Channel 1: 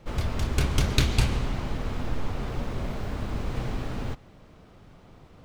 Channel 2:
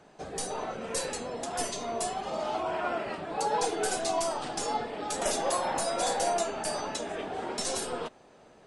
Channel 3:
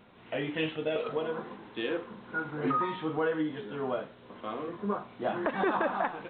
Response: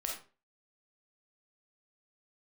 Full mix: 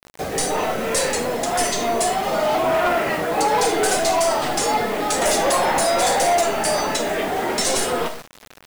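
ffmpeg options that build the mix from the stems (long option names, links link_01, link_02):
-filter_complex "[1:a]equalizer=frequency=2000:width_type=o:width=0.34:gain=6,volume=3dB,asplit=2[link_01][link_02];[link_02]volume=-5dB[link_03];[2:a]volume=-7dB[link_04];[3:a]atrim=start_sample=2205[link_05];[link_03][link_05]afir=irnorm=-1:irlink=0[link_06];[link_01][link_04][link_06]amix=inputs=3:normalize=0,acrusher=bits=5:mode=log:mix=0:aa=0.000001,aeval=exprs='0.335*(cos(1*acos(clip(val(0)/0.335,-1,1)))-cos(1*PI/2))+0.0668*(cos(5*acos(clip(val(0)/0.335,-1,1)))-cos(5*PI/2))':channel_layout=same,acrusher=bits=5:mix=0:aa=0.000001"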